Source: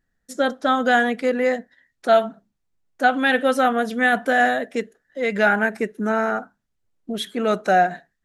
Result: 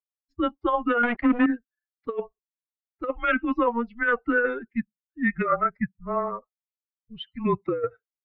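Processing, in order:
spectral dynamics exaggerated over time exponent 2
notch filter 1,900 Hz, Q 29
compressor whose output falls as the input rises −22 dBFS, ratio −0.5
0:01.03–0:01.46: leveller curve on the samples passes 3
single-sideband voice off tune −240 Hz 440–2,800 Hz
level +2 dB

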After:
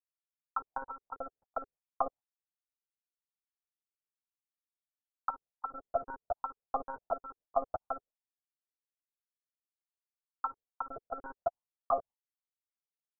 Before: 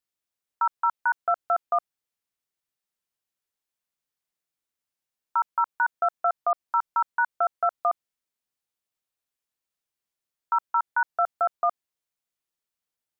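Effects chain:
slices reordered back to front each 287 ms, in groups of 2
one-pitch LPC vocoder at 8 kHz 270 Hz
noise gate with hold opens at −47 dBFS
envelope-controlled low-pass 420–1,300 Hz down, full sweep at −22 dBFS
level −4.5 dB

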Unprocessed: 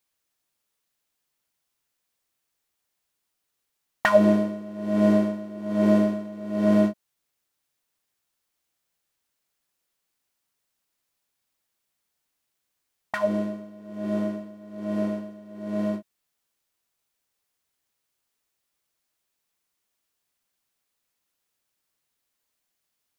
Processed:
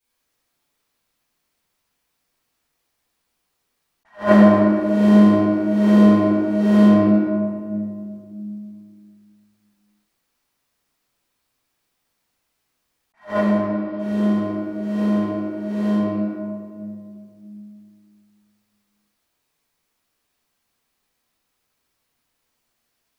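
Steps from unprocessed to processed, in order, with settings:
0:13.56–0:13.99: elliptic low-pass filter 5,000 Hz
convolution reverb RT60 2.2 s, pre-delay 3 ms, DRR −17.5 dB
level that may rise only so fast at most 230 dB per second
level −8.5 dB

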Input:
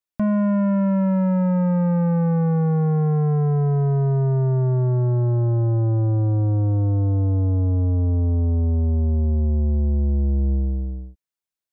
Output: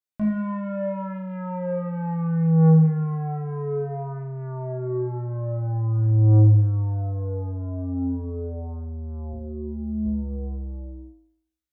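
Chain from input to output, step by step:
0:09.33–0:10.06: graphic EQ with 10 bands 125 Hz −11 dB, 250 Hz +6 dB, 500 Hz −6 dB, 1,000 Hz −6 dB
flutter between parallel walls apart 3.2 metres, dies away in 0.66 s
level −8 dB

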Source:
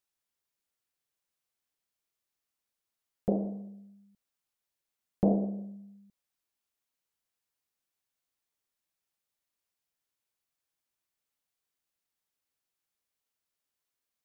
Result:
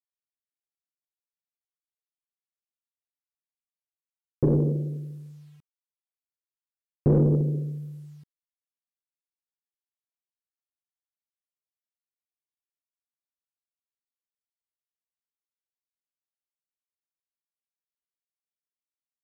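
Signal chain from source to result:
in parallel at +3 dB: brickwall limiter −22.5 dBFS, peak gain reduction 8 dB
on the sum: mid-hump overdrive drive 20 dB, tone 1,100 Hz, clips at −10 dBFS
tilt shelving filter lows +7 dB, about 900 Hz
bit reduction 10 bits
wrong playback speed 45 rpm record played at 33 rpm
level −6 dB

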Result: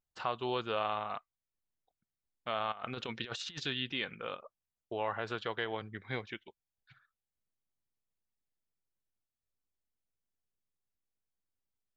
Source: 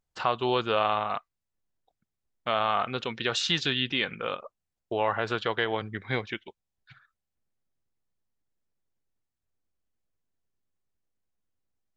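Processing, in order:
0:02.72–0:03.60: compressor whose output falls as the input rises −32 dBFS, ratio −0.5
level −8.5 dB

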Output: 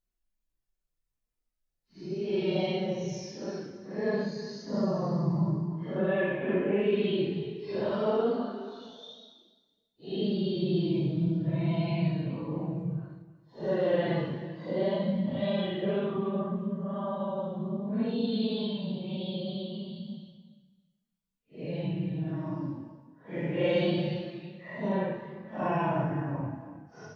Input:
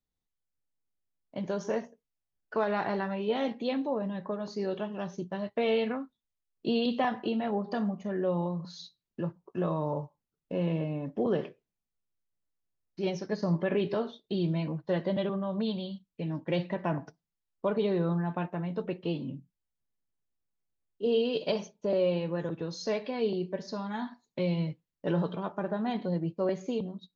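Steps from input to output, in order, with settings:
flutter between parallel walls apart 8.3 metres, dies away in 0.21 s
extreme stretch with random phases 6.1×, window 0.05 s, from 0:12.65

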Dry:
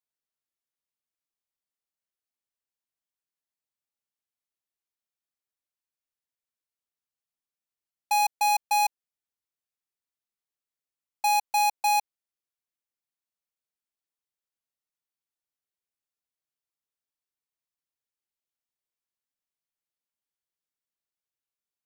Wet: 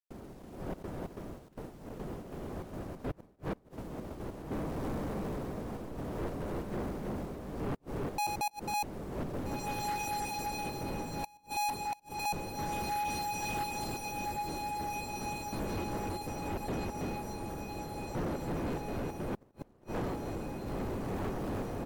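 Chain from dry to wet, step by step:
wind on the microphone 410 Hz −38 dBFS
gate pattern ".xxx.xx.xxx.x." 143 BPM −60 dB
0:11.37–0:11.93: pair of resonant band-passes 560 Hz, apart 1.9 octaves
multi-tap delay 90/265/327 ms −15/−14/−3.5 dB
in parallel at −2 dB: downward compressor 5 to 1, threshold −44 dBFS, peak gain reduction 22 dB
on the sum: log-companded quantiser 6 bits
feedback delay with all-pass diffusion 1,731 ms, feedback 58%, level −7 dB
gate with flip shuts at −18 dBFS, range −39 dB
soft clipping −32.5 dBFS, distortion −8 dB
level +2 dB
MP3 80 kbit/s 48,000 Hz

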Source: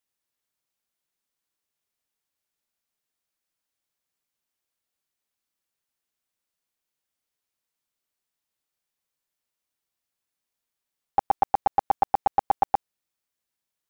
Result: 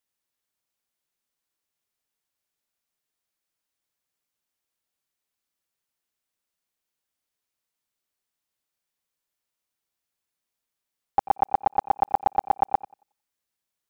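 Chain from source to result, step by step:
tape delay 90 ms, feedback 25%, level −15.5 dB, low-pass 2,000 Hz

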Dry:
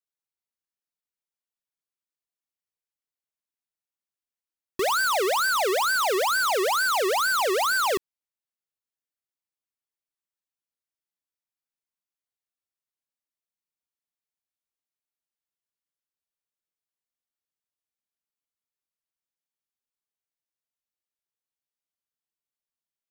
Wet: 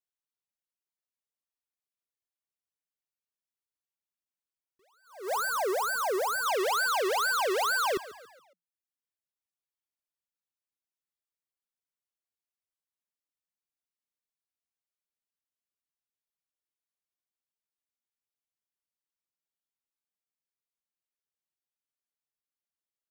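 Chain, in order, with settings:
reverb reduction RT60 0.72 s
0:05.08–0:06.46: parametric band 3,000 Hz −11 dB 1.3 octaves
on a send: echo with shifted repeats 139 ms, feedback 49%, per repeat +43 Hz, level −17 dB
on the sum: level that may rise only so fast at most 130 dB per second
level −4 dB

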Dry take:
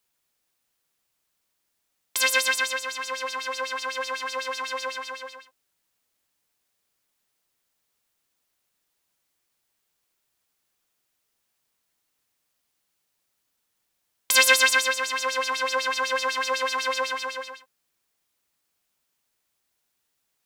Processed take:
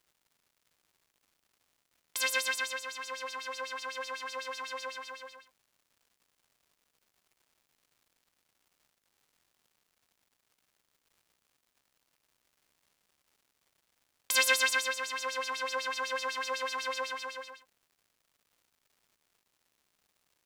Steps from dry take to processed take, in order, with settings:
surface crackle 280 per second −49 dBFS
level −8.5 dB

